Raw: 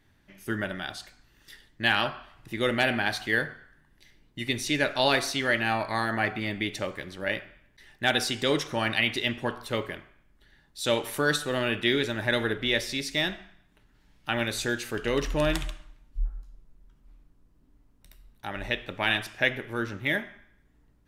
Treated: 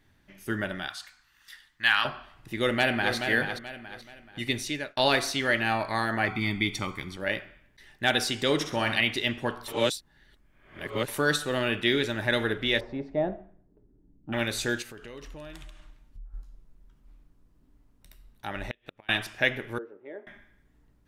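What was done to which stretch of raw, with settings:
0:00.88–0:02.05: low shelf with overshoot 770 Hz −13 dB, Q 1.5
0:02.57–0:03.15: delay throw 430 ms, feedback 35%, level −7 dB
0:04.53–0:04.97: fade out linear
0:06.28–0:07.17: comb filter 0.9 ms, depth 76%
0:08.54–0:09.01: flutter between parallel walls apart 11.2 metres, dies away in 0.48 s
0:09.68–0:11.08: reverse
0:12.79–0:14.32: low-pass with resonance 960 Hz → 270 Hz, resonance Q 2.6
0:14.82–0:16.34: downward compressor 4 to 1, threshold −43 dBFS
0:18.63–0:19.09: gate with flip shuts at −20 dBFS, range −34 dB
0:19.78–0:20.27: four-pole ladder band-pass 480 Hz, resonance 65%

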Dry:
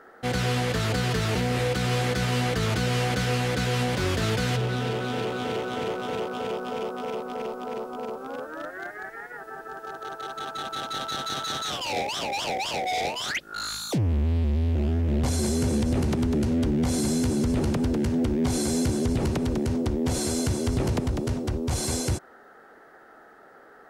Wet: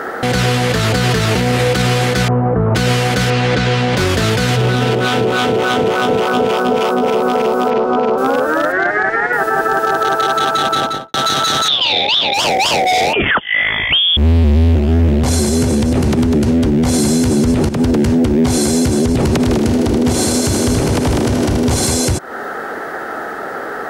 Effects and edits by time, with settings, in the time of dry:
0:02.28–0:02.75: low-pass filter 1,100 Hz 24 dB per octave
0:03.30–0:03.97: low-pass filter 4,900 Hz
0:04.95–0:07.08: two-band tremolo in antiphase 3.4 Hz, crossover 720 Hz
0:07.70–0:08.18: high-frequency loss of the air 140 metres
0:08.72–0:09.33: high-frequency loss of the air 120 metres
0:10.56–0:11.14: fade out and dull
0:11.68–0:12.34: low-pass with resonance 3,600 Hz, resonance Q 13
0:13.13–0:14.17: voice inversion scrambler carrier 3,400 Hz
0:17.69–0:18.40: fade in equal-power, from −13.5 dB
0:19.32–0:21.87: feedback echo with a high-pass in the loop 78 ms, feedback 79%, high-pass 170 Hz, level −5 dB
whole clip: high-pass filter 60 Hz 6 dB per octave; downward compressor, threshold −36 dBFS; boost into a limiter +32 dB; level −5 dB

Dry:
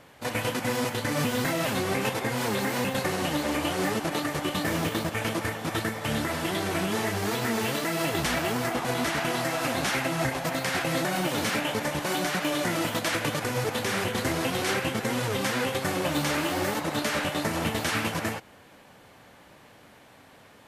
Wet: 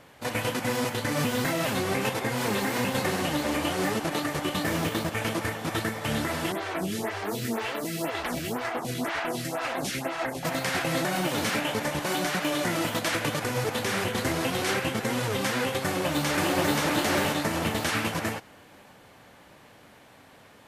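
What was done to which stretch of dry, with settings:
0:01.94–0:02.70: delay throw 510 ms, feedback 40%, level −7.5 dB
0:06.52–0:10.43: phaser with staggered stages 2 Hz
0:15.84–0:16.81: delay throw 530 ms, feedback 30%, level −0.5 dB

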